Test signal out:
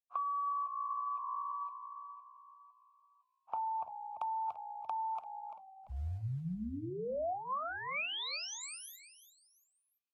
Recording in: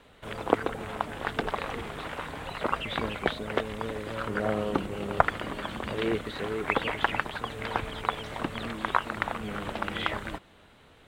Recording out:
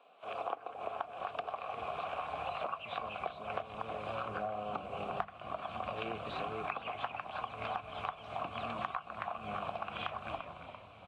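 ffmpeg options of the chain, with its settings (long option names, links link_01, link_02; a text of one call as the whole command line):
ffmpeg -i in.wav -filter_complex "[0:a]asplit=3[link_01][link_02][link_03];[link_01]bandpass=frequency=730:width_type=q:width=8,volume=0dB[link_04];[link_02]bandpass=frequency=1090:width_type=q:width=8,volume=-6dB[link_05];[link_03]bandpass=frequency=2440:width_type=q:width=8,volume=-9dB[link_06];[link_04][link_05][link_06]amix=inputs=3:normalize=0,highshelf=frequency=10000:gain=3,acrossover=split=110|750|6100[link_07][link_08][link_09][link_10];[link_07]acrusher=bits=3:mode=log:mix=0:aa=0.000001[link_11];[link_08]asplit=2[link_12][link_13];[link_13]adelay=39,volume=-13.5dB[link_14];[link_12][link_14]amix=inputs=2:normalize=0[link_15];[link_11][link_15][link_09][link_10]amix=inputs=4:normalize=0,asplit=4[link_16][link_17][link_18][link_19];[link_17]adelay=341,afreqshift=-59,volume=-14dB[link_20];[link_18]adelay=682,afreqshift=-118,volume=-22.9dB[link_21];[link_19]adelay=1023,afreqshift=-177,volume=-31.7dB[link_22];[link_16][link_20][link_21][link_22]amix=inputs=4:normalize=0,dynaudnorm=framelen=150:gausssize=5:maxgain=7.5dB,highpass=frequency=62:width=0.5412,highpass=frequency=62:width=1.3066,asubboost=boost=10.5:cutoff=120,acompressor=threshold=-40dB:ratio=16,bandreject=frequency=50:width_type=h:width=6,bandreject=frequency=100:width_type=h:width=6,bandreject=frequency=150:width_type=h:width=6,bandreject=frequency=200:width_type=h:width=6,bandreject=frequency=250:width_type=h:width=6,bandreject=frequency=300:width_type=h:width=6,volume=6dB" -ar 48000 -c:a libvorbis -b:a 32k out.ogg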